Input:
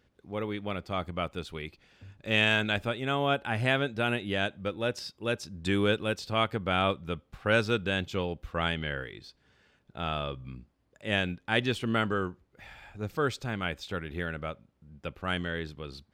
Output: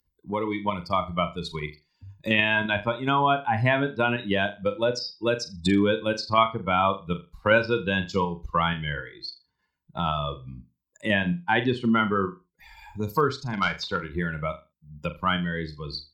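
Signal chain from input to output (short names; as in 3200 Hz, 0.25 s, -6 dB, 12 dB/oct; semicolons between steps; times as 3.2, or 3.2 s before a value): per-bin expansion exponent 2; 13.53–14.15 overdrive pedal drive 13 dB, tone 3700 Hz, clips at -28.5 dBFS; thirty-one-band EQ 100 Hz -6 dB, 1000 Hz +11 dB, 5000 Hz +9 dB; in parallel at +2 dB: level quantiser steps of 13 dB; on the sum: treble ducked by the level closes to 2700 Hz, closed at -26 dBFS; on a send: flutter echo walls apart 6.9 m, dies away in 0.24 s; on the sum: three-band squash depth 70%; gain +6.5 dB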